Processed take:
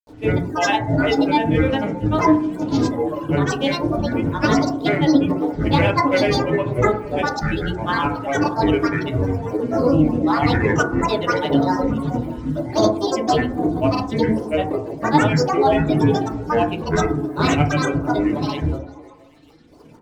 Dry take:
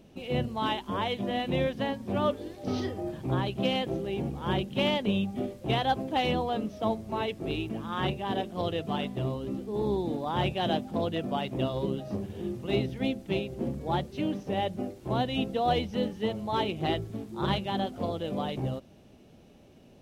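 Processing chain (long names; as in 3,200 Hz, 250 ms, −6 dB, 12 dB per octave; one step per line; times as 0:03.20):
reverb reduction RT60 2 s
in parallel at −2 dB: output level in coarse steps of 12 dB
on the sum: granular cloud, grains 20 per second, pitch spread up and down by 12 semitones
echo through a band-pass that steps 156 ms, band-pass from 260 Hz, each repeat 0.7 octaves, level −10 dB
feedback delay network reverb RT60 0.48 s, low-frequency decay 1.2×, high-frequency decay 0.25×, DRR 0.5 dB
level +7 dB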